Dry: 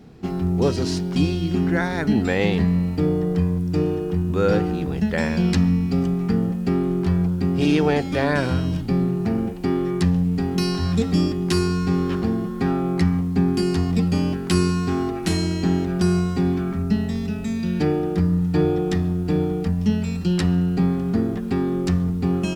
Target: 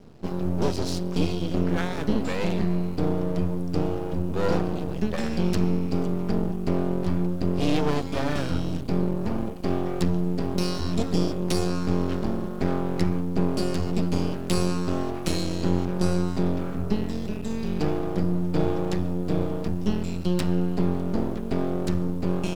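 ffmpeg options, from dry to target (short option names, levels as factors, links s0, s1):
-af "aeval=exprs='max(val(0),0)':c=same,equalizer=f=1900:t=o:w=0.69:g=-4.5"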